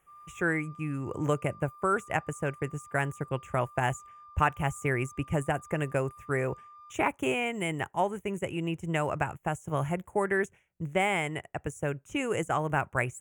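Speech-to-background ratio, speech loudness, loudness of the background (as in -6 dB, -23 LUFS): 20.0 dB, -31.0 LUFS, -51.0 LUFS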